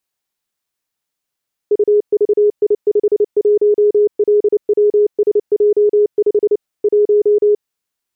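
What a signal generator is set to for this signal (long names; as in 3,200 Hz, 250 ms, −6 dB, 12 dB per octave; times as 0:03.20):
Morse code "UVI51LWSJ5 1" 29 words per minute 416 Hz −8 dBFS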